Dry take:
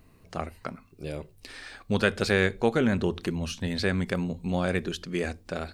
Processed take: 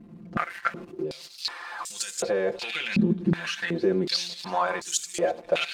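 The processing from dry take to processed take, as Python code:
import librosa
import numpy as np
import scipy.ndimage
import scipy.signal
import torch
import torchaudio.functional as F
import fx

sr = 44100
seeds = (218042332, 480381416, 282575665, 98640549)

p1 = x + 0.5 * 10.0 ** (-36.0 / 20.0) * np.sign(x)
p2 = p1 + fx.echo_wet_highpass(p1, sr, ms=340, feedback_pct=67, hz=3700.0, wet_db=-7.5, dry=0)
p3 = fx.leveller(p2, sr, passes=1)
p4 = fx.over_compress(p3, sr, threshold_db=-22.0, ratio=-0.5)
p5 = p3 + (p4 * 10.0 ** (0.0 / 20.0))
p6 = fx.high_shelf(p5, sr, hz=2700.0, db=6.5)
p7 = fx.hum_notches(p6, sr, base_hz=60, count=9)
p8 = fx.level_steps(p7, sr, step_db=10)
p9 = p8 + 0.84 * np.pad(p8, (int(5.8 * sr / 1000.0), 0))[:len(p8)]
p10 = fx.filter_held_bandpass(p9, sr, hz=2.7, low_hz=220.0, high_hz=7300.0)
y = p10 * 10.0 ** (4.5 / 20.0)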